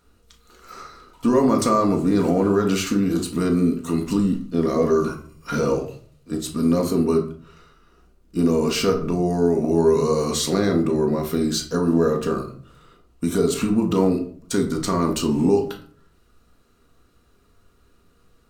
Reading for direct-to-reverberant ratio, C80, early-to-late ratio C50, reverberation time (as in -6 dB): 1.5 dB, 14.5 dB, 10.5 dB, 0.50 s